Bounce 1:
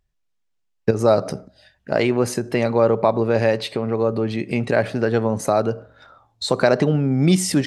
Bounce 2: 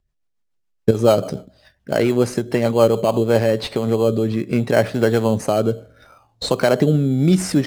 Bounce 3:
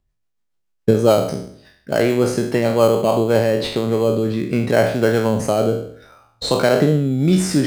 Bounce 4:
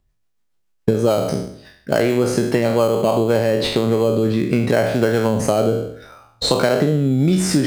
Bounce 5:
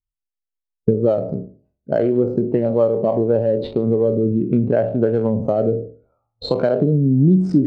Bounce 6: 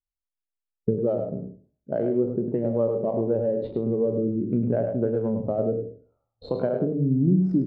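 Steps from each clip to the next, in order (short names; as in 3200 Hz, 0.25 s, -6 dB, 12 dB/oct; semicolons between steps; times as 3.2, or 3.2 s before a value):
AGC gain up to 4.5 dB; in parallel at -7 dB: sample-and-hold 12×; on the sum: rotary speaker horn 7 Hz, later 0.7 Hz, at 2.87; gain -1 dB
spectral trails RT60 0.61 s; gain -1 dB
compressor, threshold -17 dBFS, peak gain reduction 9 dB; gain +4.5 dB
Wiener smoothing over 25 samples; air absorption 79 m; spectral expander 1.5:1
LPF 1000 Hz 6 dB/oct; notches 50/100/150 Hz; echo 0.103 s -7 dB; gain -7 dB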